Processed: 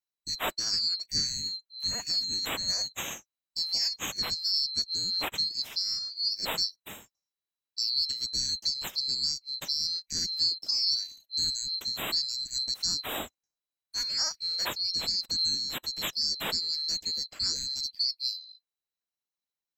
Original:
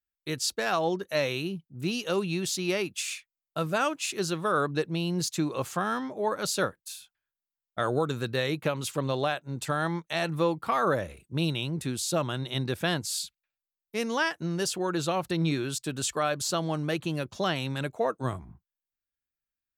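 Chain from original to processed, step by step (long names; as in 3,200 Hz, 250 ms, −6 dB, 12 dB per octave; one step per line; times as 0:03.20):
neighbouring bands swapped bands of 4,000 Hz
high-shelf EQ 5,800 Hz −5.5 dB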